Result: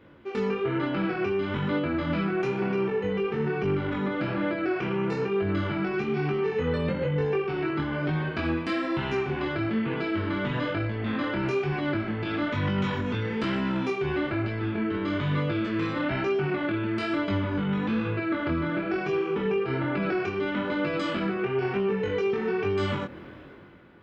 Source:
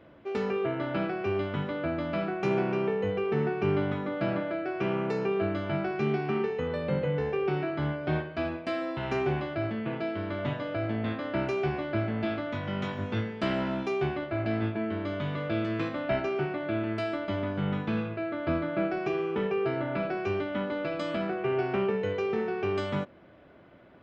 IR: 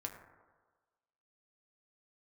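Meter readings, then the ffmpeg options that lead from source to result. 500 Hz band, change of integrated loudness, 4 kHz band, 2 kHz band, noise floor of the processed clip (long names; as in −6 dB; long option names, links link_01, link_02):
+1.5 dB, +2.5 dB, +4.5 dB, +4.5 dB, −42 dBFS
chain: -af "equalizer=frequency=650:width=4.1:gain=-12,dynaudnorm=framelen=130:gausssize=11:maxgain=11.5dB,alimiter=limit=-19.5dB:level=0:latency=1:release=23,acompressor=threshold=-30dB:ratio=2,flanger=delay=20:depth=5.2:speed=1.1,volume=5.5dB"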